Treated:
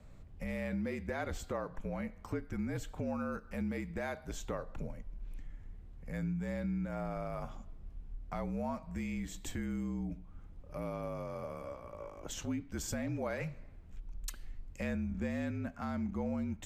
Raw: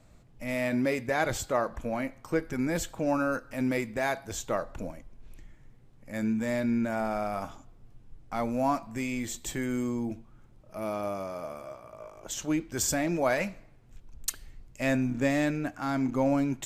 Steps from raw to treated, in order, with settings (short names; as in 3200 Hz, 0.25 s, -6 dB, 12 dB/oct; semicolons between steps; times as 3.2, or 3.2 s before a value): frequency shift -46 Hz; tone controls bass +6 dB, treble -6 dB; compressor 2.5:1, threshold -38 dBFS, peak gain reduction 12.5 dB; gain -1 dB